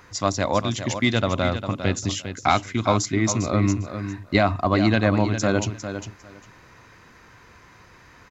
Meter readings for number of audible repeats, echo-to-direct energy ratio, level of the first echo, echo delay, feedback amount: 2, -9.5 dB, -9.5 dB, 402 ms, 17%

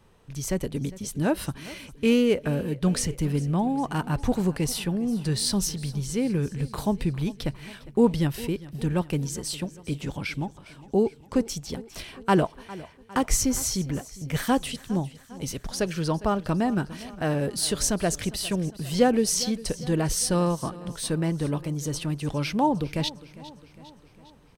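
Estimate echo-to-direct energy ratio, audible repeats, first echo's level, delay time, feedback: -17.0 dB, 4, -18.5 dB, 405 ms, 57%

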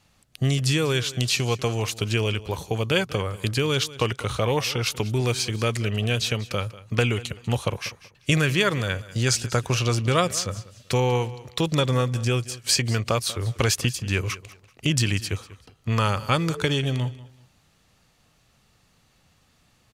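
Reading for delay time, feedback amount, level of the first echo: 192 ms, 26%, -18.0 dB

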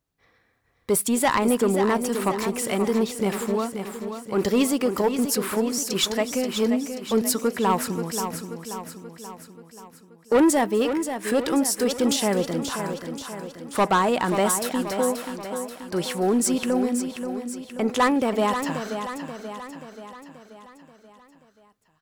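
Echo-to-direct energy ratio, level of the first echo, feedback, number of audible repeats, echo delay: -7.0 dB, -22.0 dB, no regular repeats, 7, 252 ms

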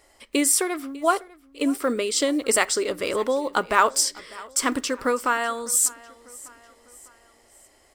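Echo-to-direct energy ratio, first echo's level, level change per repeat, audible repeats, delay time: -20.5 dB, -21.5 dB, -6.0 dB, 3, 599 ms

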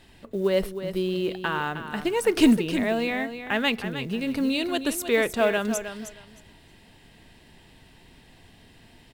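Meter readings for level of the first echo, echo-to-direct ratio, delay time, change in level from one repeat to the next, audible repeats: -10.0 dB, -10.0 dB, 312 ms, -15.0 dB, 2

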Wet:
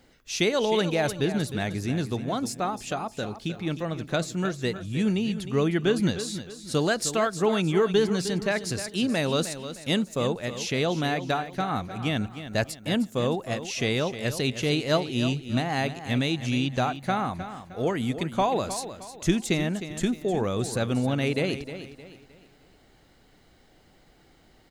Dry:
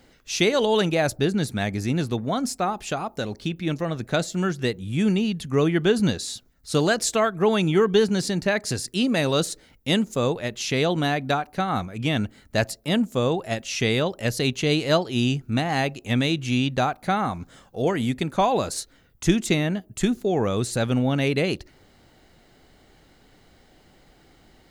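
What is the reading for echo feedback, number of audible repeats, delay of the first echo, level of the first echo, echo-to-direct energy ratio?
36%, 3, 309 ms, -11.5 dB, -11.0 dB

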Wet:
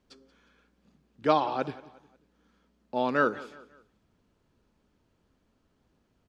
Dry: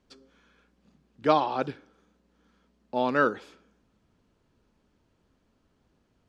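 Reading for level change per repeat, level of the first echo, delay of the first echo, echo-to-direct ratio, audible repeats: -8.0 dB, -19.0 dB, 180 ms, -18.5 dB, 3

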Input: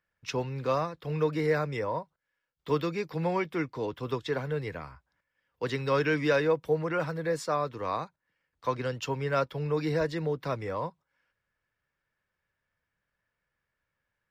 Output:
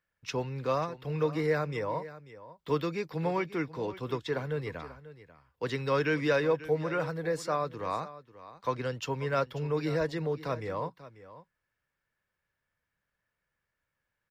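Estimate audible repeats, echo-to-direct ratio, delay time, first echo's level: 1, -16.0 dB, 540 ms, -16.0 dB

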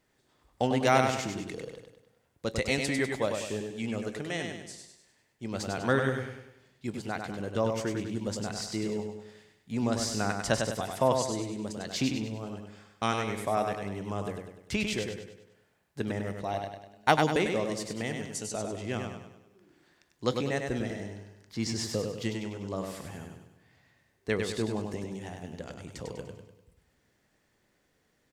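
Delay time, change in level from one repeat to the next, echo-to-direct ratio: 99 ms, -7.0 dB, -4.0 dB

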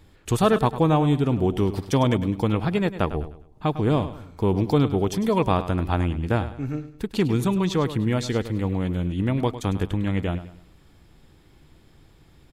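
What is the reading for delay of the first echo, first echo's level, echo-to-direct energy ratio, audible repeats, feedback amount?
102 ms, -13.0 dB, -12.5 dB, 3, 36%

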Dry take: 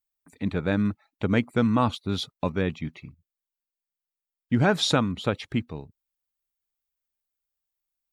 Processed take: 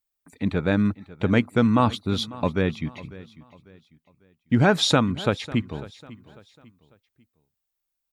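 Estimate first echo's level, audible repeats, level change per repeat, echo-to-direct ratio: -19.0 dB, 2, -9.0 dB, -18.5 dB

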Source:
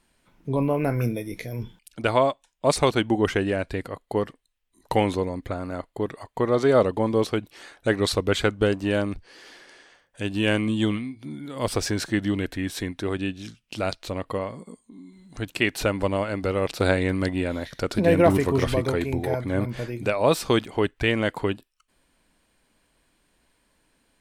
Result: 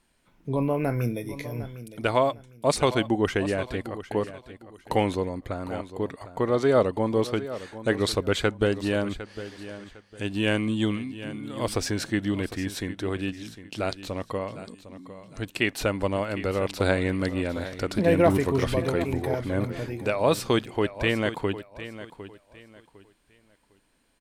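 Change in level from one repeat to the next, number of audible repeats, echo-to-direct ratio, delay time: -11.5 dB, 2, -13.5 dB, 755 ms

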